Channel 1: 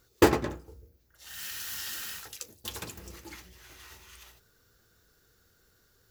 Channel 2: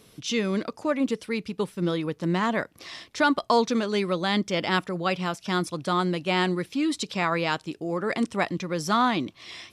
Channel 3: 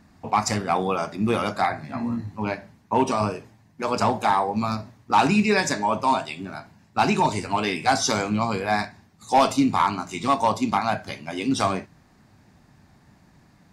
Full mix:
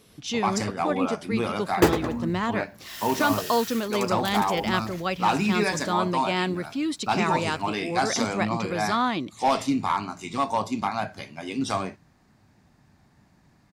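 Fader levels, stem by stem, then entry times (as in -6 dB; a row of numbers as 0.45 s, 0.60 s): +1.0 dB, -2.0 dB, -4.5 dB; 1.60 s, 0.00 s, 0.10 s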